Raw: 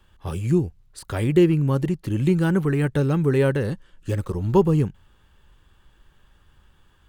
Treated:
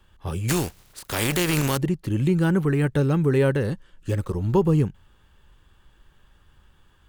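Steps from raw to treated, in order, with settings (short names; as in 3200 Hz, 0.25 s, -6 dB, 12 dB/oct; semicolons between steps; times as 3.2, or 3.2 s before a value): 0.48–1.76 spectral contrast lowered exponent 0.48; limiter -11 dBFS, peak gain reduction 10 dB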